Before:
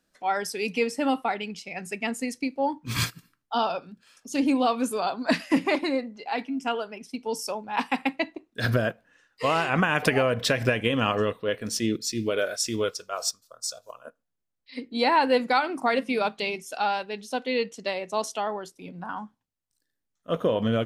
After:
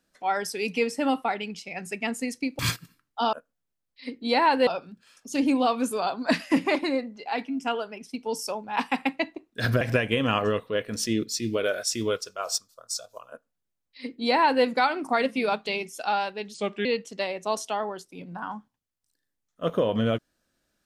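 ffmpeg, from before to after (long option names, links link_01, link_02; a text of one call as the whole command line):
ffmpeg -i in.wav -filter_complex "[0:a]asplit=7[link_01][link_02][link_03][link_04][link_05][link_06][link_07];[link_01]atrim=end=2.592[link_08];[link_02]atrim=start=2.928:end=3.672[link_09];[link_03]atrim=start=14.028:end=15.372[link_10];[link_04]atrim=start=3.668:end=8.812[link_11];[link_05]atrim=start=10.538:end=17.274[link_12];[link_06]atrim=start=17.27:end=17.52,asetpts=PTS-STARTPTS,asetrate=35280,aresample=44100,atrim=end_sample=13781,asetpts=PTS-STARTPTS[link_13];[link_07]atrim=start=17.516[link_14];[link_08][link_09]acrossfade=duration=0.004:curve1=hsin:curve2=hsin[link_15];[link_15][link_10]acrossfade=duration=0.004:curve1=hsin:curve2=hsin[link_16];[link_16][link_11]acrossfade=duration=0.004:curve1=hsin:curve2=hsin[link_17];[link_17][link_12]acrossfade=duration=0.004:curve1=hsin:curve2=hsin[link_18];[link_18][link_13]acrossfade=duration=0.004:curve1=hsin:curve2=hsin[link_19];[link_19][link_14]acrossfade=duration=0.004:curve1=hsin:curve2=hsin" out.wav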